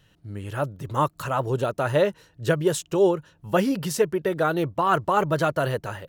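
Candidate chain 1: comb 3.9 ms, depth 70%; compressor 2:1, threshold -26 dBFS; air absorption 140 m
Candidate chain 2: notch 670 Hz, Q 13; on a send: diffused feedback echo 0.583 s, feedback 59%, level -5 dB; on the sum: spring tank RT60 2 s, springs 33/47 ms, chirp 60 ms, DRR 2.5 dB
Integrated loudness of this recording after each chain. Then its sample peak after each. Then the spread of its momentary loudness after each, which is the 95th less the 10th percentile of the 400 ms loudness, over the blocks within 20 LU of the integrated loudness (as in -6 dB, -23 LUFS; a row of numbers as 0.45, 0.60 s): -29.0, -21.0 LUFS; -13.0, -6.0 dBFS; 6, 9 LU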